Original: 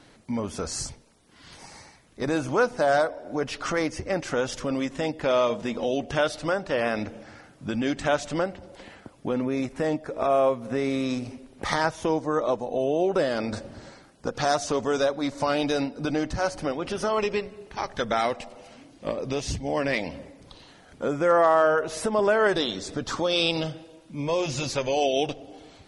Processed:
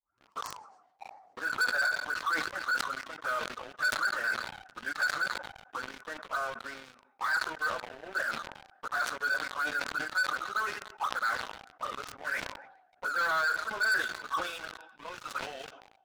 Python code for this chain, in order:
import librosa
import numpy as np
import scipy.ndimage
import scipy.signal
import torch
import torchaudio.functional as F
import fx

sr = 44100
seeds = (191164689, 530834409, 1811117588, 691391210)

p1 = fx.tape_start_head(x, sr, length_s=0.59)
p2 = fx.auto_wah(p1, sr, base_hz=710.0, top_hz=1500.0, q=21.0, full_db=-23.0, direction='up')
p3 = fx.stretch_vocoder_free(p2, sr, factor=0.62)
p4 = p3 + fx.echo_thinned(p3, sr, ms=139, feedback_pct=79, hz=510.0, wet_db=-23, dry=0)
p5 = fx.leveller(p4, sr, passes=5)
y = fx.sustainer(p5, sr, db_per_s=68.0)